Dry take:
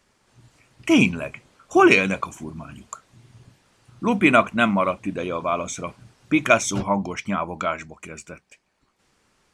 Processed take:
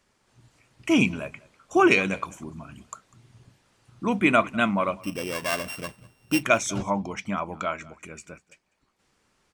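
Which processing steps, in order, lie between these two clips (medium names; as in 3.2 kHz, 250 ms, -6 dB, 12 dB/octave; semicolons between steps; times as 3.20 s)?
5.01–6.43 s: sorted samples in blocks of 16 samples; delay 198 ms -23 dB; trim -4 dB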